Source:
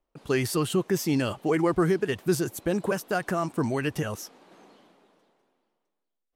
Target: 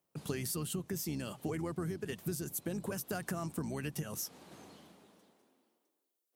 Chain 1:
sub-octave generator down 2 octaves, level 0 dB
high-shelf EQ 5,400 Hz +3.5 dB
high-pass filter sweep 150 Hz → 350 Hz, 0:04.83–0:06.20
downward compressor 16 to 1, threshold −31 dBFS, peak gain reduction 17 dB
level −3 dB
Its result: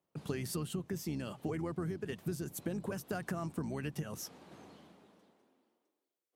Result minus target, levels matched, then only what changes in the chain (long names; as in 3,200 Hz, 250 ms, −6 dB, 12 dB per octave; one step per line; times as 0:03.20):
8,000 Hz band −5.0 dB
change: high-shelf EQ 5,400 Hz +15 dB